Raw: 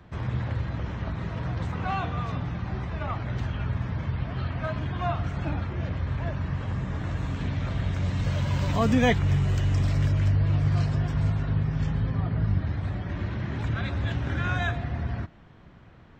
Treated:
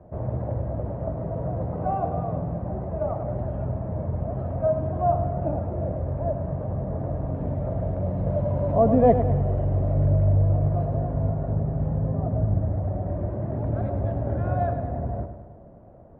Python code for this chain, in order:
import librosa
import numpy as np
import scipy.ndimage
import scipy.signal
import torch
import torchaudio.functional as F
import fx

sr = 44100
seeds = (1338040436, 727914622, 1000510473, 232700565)

p1 = fx.lowpass_res(x, sr, hz=620.0, q=4.6)
y = p1 + fx.echo_feedback(p1, sr, ms=103, feedback_pct=57, wet_db=-9.5, dry=0)